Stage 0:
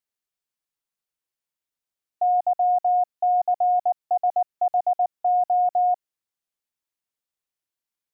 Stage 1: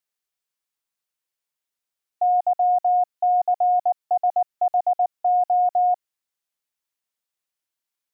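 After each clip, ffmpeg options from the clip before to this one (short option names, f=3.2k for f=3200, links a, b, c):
-af "lowshelf=f=440:g=-6.5,volume=3dB"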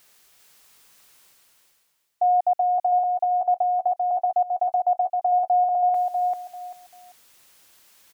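-af "areverse,acompressor=mode=upward:threshold=-34dB:ratio=2.5,areverse,aecho=1:1:392|784|1176:0.668|0.14|0.0295"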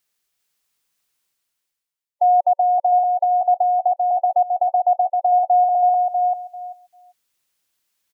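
-af "afftdn=nr=25:nf=-30,equalizer=f=740:w=0.54:g=-3.5,volume=8dB"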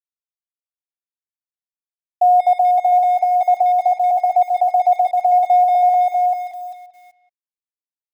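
-filter_complex "[0:a]acrusher=bits=7:mix=0:aa=0.5,asplit=2[a][b];[b]adelay=180,highpass=300,lowpass=3.4k,asoftclip=type=hard:threshold=-20dB,volume=-13dB[c];[a][c]amix=inputs=2:normalize=0,volume=2.5dB"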